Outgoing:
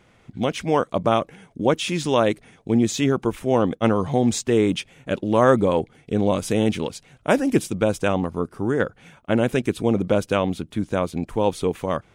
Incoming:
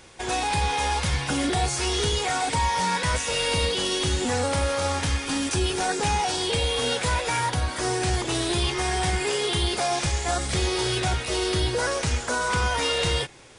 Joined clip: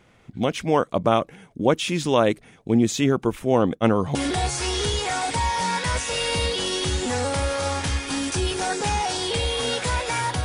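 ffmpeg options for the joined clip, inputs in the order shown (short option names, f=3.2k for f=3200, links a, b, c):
-filter_complex "[0:a]apad=whole_dur=10.44,atrim=end=10.44,atrim=end=4.152[a];[1:a]atrim=start=1.338:end=7.63[b];[a][b]acrossfade=d=0.004:c1=hsin:c2=hsin"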